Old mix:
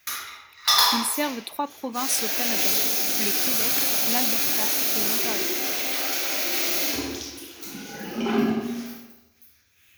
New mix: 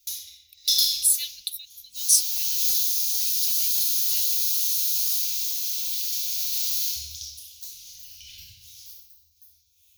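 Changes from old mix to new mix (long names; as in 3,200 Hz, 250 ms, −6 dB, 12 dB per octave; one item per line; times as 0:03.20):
speech +8.0 dB
master: add inverse Chebyshev band-stop filter 230–1,300 Hz, stop band 60 dB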